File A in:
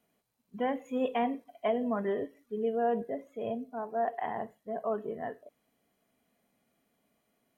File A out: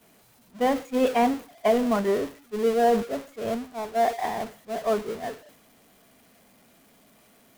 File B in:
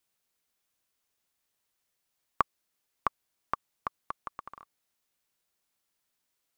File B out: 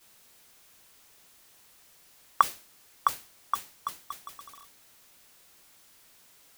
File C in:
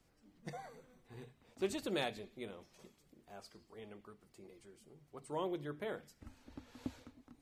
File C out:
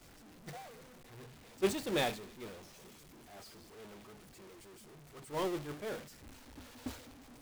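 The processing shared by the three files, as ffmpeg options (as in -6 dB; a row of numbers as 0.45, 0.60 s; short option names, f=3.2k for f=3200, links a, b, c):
-af "aeval=exprs='val(0)+0.5*0.0224*sgn(val(0))':c=same,agate=range=-33dB:threshold=-26dB:ratio=3:detection=peak,volume=7dB"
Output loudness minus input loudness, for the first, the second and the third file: +8.0, +5.0, +5.5 LU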